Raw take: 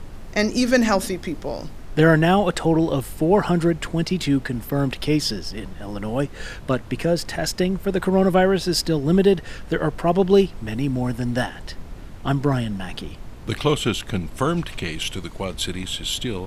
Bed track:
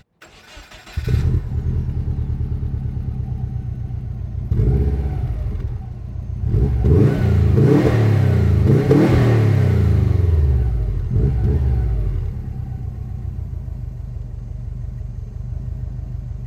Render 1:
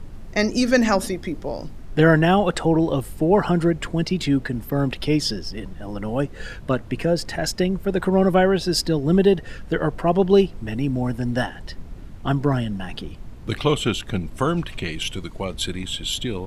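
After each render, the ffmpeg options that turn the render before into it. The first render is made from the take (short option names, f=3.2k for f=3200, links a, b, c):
-af "afftdn=nr=6:nf=-38"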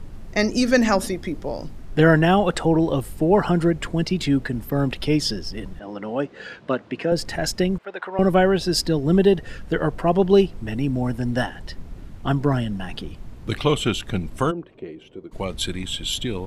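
-filter_complex "[0:a]asettb=1/sr,asplit=3[a][b][c];[a]atrim=end=5.794[d];[b]atrim=start=5.79:end=7.12,asetpts=PTS-STARTPTS,afade=t=in:d=0.004:c=qsin,afade=t=out:st=1.326:d=0.004:c=qsin,highpass=230,lowpass=4.6k[e];[c]atrim=start=7.116[f];[d][e]acrossfade=d=0.004:c1=hsin:c2=qsin[g];[g][f]acrossfade=d=0.004:c1=qsin:c2=hsin,asettb=1/sr,asplit=3[h][i][j];[h]atrim=end=7.784[k];[i]atrim=start=7.78:end=8.19,asetpts=PTS-STARTPTS,afade=t=in:d=0.004:c=qsin,afade=t=out:st=0.406:d=0.004:c=qsin,highpass=800,lowpass=2.9k[l];[j]atrim=start=8.186[m];[k][l]acrossfade=d=0.004:c1=hsin:c2=qsin[n];[n][m]acrossfade=d=0.004:c1=qsin:c2=hsin,asplit=3[o][p][q];[o]afade=t=out:st=14.5:d=0.02[r];[p]bandpass=f=410:t=q:w=2.1,afade=t=in:st=14.5:d=0.02,afade=t=out:st=15.31:d=0.02[s];[q]afade=t=in:st=15.31:d=0.02[t];[r][s][t]amix=inputs=3:normalize=0"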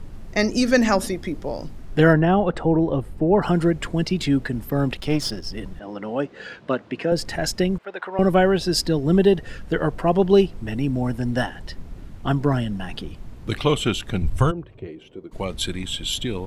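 -filter_complex "[0:a]asplit=3[a][b][c];[a]afade=t=out:st=2.12:d=0.02[d];[b]lowpass=f=1.1k:p=1,afade=t=in:st=2.12:d=0.02,afade=t=out:st=3.41:d=0.02[e];[c]afade=t=in:st=3.41:d=0.02[f];[d][e][f]amix=inputs=3:normalize=0,asettb=1/sr,asplit=3[g][h][i];[g]atrim=end=4.974[j];[h]atrim=start=4.97:end=5.45,asetpts=PTS-STARTPTS,afade=t=in:d=0.004:c=qsin,afade=t=out:st=0.476:d=0.004:c=qsin,aeval=exprs='if(lt(val(0),0),0.447*val(0),val(0))':c=same[k];[i]atrim=start=5.446[l];[j][k]acrossfade=d=0.004:c1=hsin:c2=qsin[m];[m][l]acrossfade=d=0.004:c1=qsin:c2=hsin,asettb=1/sr,asplit=3[n][o][p];[n]atrim=end=14.224[q];[o]atrim=start=14.22:end=14.87,asetpts=PTS-STARTPTS,afade=t=in:d=0.004:c=qsin,afade=t=out:st=0.646:d=0.004:c=qsin,lowshelf=f=150:t=q:w=1.5:g=11.5[r];[p]atrim=start=14.866[s];[q][r]acrossfade=d=0.004:c1=hsin:c2=qsin[t];[t][s]acrossfade=d=0.004:c1=qsin:c2=hsin"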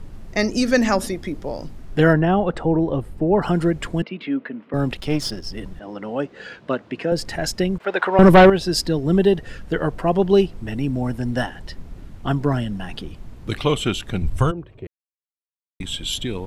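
-filter_complex "[0:a]asettb=1/sr,asplit=3[a][b][c];[a]atrim=end=4.024[d];[b]atrim=start=4.02:end=4.74,asetpts=PTS-STARTPTS,afade=t=in:d=0.004:c=qsin,afade=t=out:st=0.716:d=0.004:c=qsin,highpass=f=240:w=0.5412,highpass=f=240:w=1.3066,equalizer=f=360:t=q:w=4:g=-8,equalizer=f=790:t=q:w=4:g=-8,equalizer=f=1.7k:t=q:w=4:g=-4,lowpass=f=2.7k:w=0.5412,lowpass=f=2.7k:w=1.3066[e];[c]atrim=start=4.736[f];[d][e]acrossfade=d=0.004:c1=hsin:c2=qsin[g];[g][f]acrossfade=d=0.004:c1=qsin:c2=hsin,asettb=1/sr,asplit=3[h][i][j];[h]atrim=end=7.804[k];[i]atrim=start=7.8:end=8.5,asetpts=PTS-STARTPTS,afade=t=in:d=0.004:c=qsin,afade=t=out:st=0.696:d=0.004:c=qsin,aeval=exprs='0.631*sin(PI/2*2.24*val(0)/0.631)':c=same[l];[j]atrim=start=8.496[m];[k][l]acrossfade=d=0.004:c1=hsin:c2=qsin[n];[n][m]acrossfade=d=0.004:c1=qsin:c2=hsin,asplit=3[o][p][q];[o]atrim=end=14.87,asetpts=PTS-STARTPTS,afade=t=out:st=14.866:d=0.004:c=hsin[r];[p]atrim=start=14.87:end=15.8,asetpts=PTS-STARTPTS,volume=0[s];[q]atrim=start=15.8,asetpts=PTS-STARTPTS,afade=t=in:d=0.004:c=hsin[t];[r][s][t]concat=n=3:v=0:a=1"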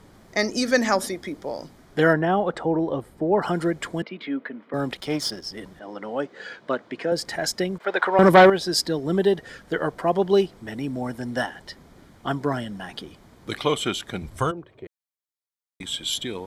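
-af "highpass=f=400:p=1,bandreject=f=2.7k:w=6.5"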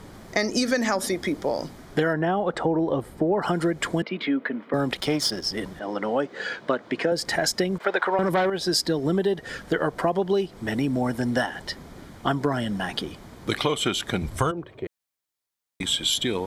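-filter_complex "[0:a]asplit=2[a][b];[b]alimiter=limit=-12.5dB:level=0:latency=1,volume=2dB[c];[a][c]amix=inputs=2:normalize=0,acompressor=threshold=-20dB:ratio=6"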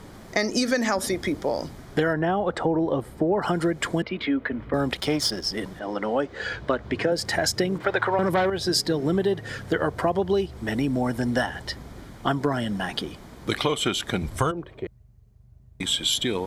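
-filter_complex "[1:a]volume=-26dB[a];[0:a][a]amix=inputs=2:normalize=0"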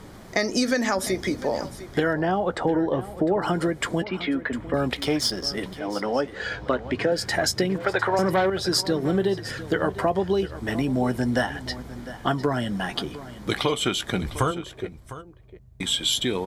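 -filter_complex "[0:a]asplit=2[a][b];[b]adelay=16,volume=-14dB[c];[a][c]amix=inputs=2:normalize=0,aecho=1:1:704:0.178"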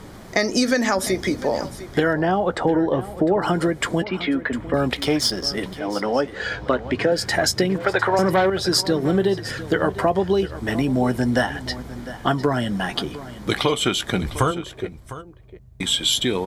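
-af "volume=3.5dB"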